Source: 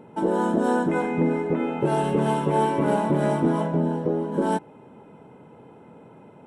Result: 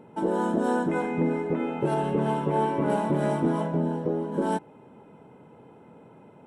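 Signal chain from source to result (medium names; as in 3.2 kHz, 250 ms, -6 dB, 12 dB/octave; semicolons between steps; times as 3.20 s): 1.94–2.90 s: treble shelf 4.2 kHz -9 dB; trim -3 dB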